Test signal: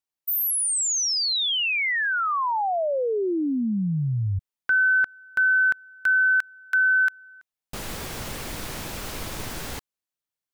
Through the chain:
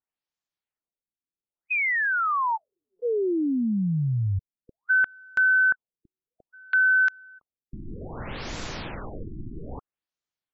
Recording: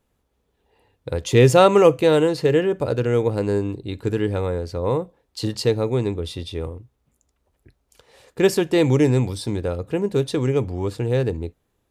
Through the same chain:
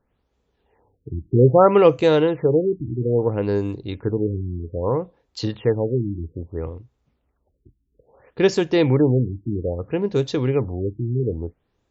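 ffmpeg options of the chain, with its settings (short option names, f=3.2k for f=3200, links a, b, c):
-af "afftfilt=real='re*lt(b*sr/1024,350*pow(7800/350,0.5+0.5*sin(2*PI*0.61*pts/sr)))':imag='im*lt(b*sr/1024,350*pow(7800/350,0.5+0.5*sin(2*PI*0.61*pts/sr)))':win_size=1024:overlap=0.75"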